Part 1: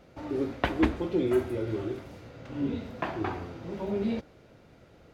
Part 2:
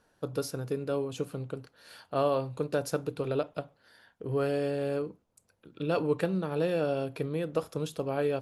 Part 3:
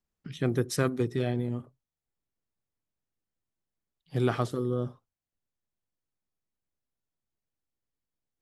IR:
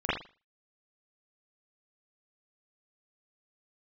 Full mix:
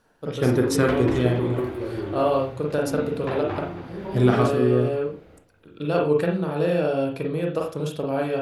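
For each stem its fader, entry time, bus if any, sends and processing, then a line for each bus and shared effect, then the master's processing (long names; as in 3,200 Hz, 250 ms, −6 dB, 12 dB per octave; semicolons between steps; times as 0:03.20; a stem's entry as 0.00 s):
0.0 dB, 0.25 s, send −12.5 dB, echo send −9.5 dB, soft clipping −27 dBFS, distortion −9 dB; parametric band 6,300 Hz −6 dB 0.77 octaves
+0.5 dB, 0.00 s, send −8.5 dB, no echo send, automatic ducking −8 dB, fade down 0.30 s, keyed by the third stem
+3.0 dB, 0.00 s, send −11 dB, no echo send, no processing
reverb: on, pre-delay 40 ms
echo: single-tap delay 275 ms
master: no processing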